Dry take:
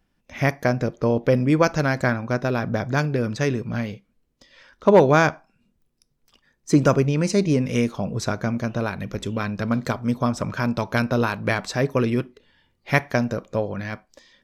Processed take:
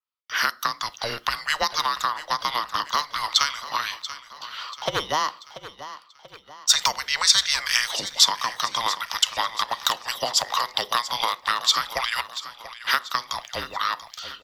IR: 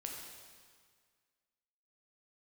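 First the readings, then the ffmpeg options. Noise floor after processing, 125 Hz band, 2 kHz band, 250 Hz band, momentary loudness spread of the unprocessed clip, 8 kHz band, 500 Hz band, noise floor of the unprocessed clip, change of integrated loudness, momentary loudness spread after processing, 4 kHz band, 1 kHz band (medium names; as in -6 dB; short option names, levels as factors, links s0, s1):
-53 dBFS, -24.5 dB, 0.0 dB, -24.0 dB, 9 LU, +12.0 dB, -14.5 dB, -70 dBFS, -1.0 dB, 16 LU, +16.0 dB, +2.5 dB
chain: -af "highpass=f=1000:w=0.5412,highpass=f=1000:w=1.3066,agate=range=0.0224:threshold=0.00251:ratio=3:detection=peak,equalizer=f=1600:t=o:w=0.67:g=11,equalizer=f=4000:t=o:w=0.67:g=11,equalizer=f=10000:t=o:w=0.67:g=-7,acompressor=threshold=0.0447:ratio=6,afreqshift=-380,crystalizer=i=4.5:c=0,afreqshift=-84,aecho=1:1:686|1372|2058|2744:0.2|0.0938|0.0441|0.0207,adynamicequalizer=threshold=0.0112:dfrequency=3900:dqfactor=0.7:tfrequency=3900:tqfactor=0.7:attack=5:release=100:ratio=0.375:range=2:mode=boostabove:tftype=highshelf,volume=1.33"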